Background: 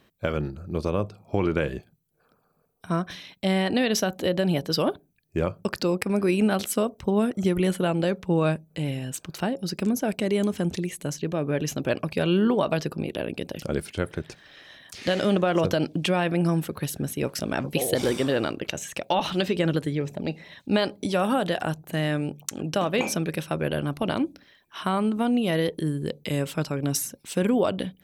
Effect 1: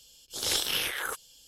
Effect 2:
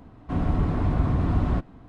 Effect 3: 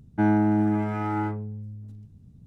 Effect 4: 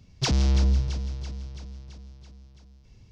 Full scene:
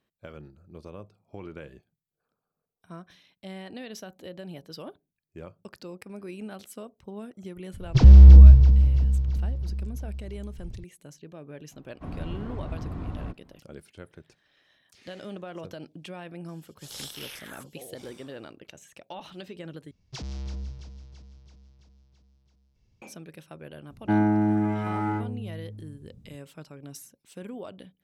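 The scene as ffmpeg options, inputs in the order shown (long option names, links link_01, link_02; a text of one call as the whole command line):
ffmpeg -i bed.wav -i cue0.wav -i cue1.wav -i cue2.wav -i cue3.wav -filter_complex "[4:a]asplit=2[link_01][link_02];[0:a]volume=-17dB[link_03];[link_01]aemphasis=mode=reproduction:type=riaa[link_04];[1:a]equalizer=frequency=340:width=1.2:gain=-5.5[link_05];[link_03]asplit=2[link_06][link_07];[link_06]atrim=end=19.914[link_08];[link_02]atrim=end=3.11,asetpts=PTS-STARTPTS,volume=-14dB[link_09];[link_07]atrim=start=23.016[link_10];[link_04]atrim=end=3.11,asetpts=PTS-STARTPTS,volume=-2dB,afade=type=in:duration=0.004:curve=hsin,afade=type=out:start_time=3.106:duration=0.004:curve=hsin,adelay=7730[link_11];[2:a]atrim=end=1.88,asetpts=PTS-STARTPTS,volume=-11.5dB,afade=type=in:duration=0.004:curve=hsin,afade=type=out:start_time=1.876:duration=0.004:curve=hsin,adelay=11720[link_12];[link_05]atrim=end=1.47,asetpts=PTS-STARTPTS,volume=-11.5dB,afade=type=in:duration=0.004:curve=hsin,afade=type=out:start_time=1.466:duration=0.004:curve=hsin,adelay=16480[link_13];[3:a]atrim=end=2.46,asetpts=PTS-STARTPTS,volume=-1dB,afade=type=in:duration=0.004:curve=hsin,afade=type=out:start_time=2.456:duration=0.004:curve=hsin,adelay=23900[link_14];[link_08][link_09]acrossfade=duration=0.004:curve1=hsin:curve2=hsin[link_15];[link_15][link_10]acrossfade=duration=0.004:curve1=hsin:curve2=hsin[link_16];[link_16][link_11][link_12][link_13][link_14]amix=inputs=5:normalize=0" out.wav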